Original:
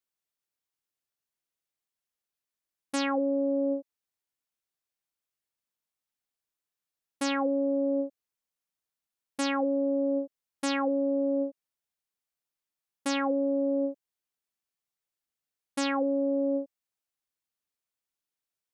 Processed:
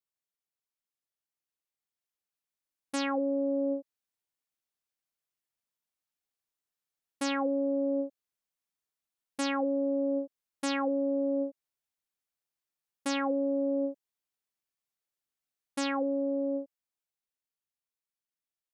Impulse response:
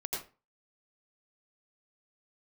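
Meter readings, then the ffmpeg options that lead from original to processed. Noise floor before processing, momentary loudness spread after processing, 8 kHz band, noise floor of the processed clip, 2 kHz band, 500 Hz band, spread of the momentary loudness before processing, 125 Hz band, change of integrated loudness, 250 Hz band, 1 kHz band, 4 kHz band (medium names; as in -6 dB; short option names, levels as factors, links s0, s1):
under -85 dBFS, 9 LU, -2.0 dB, under -85 dBFS, -2.0 dB, -2.0 dB, 9 LU, no reading, -2.0 dB, -2.0 dB, -2.0 dB, -2.0 dB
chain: -af "dynaudnorm=f=140:g=31:m=1.68,volume=0.473"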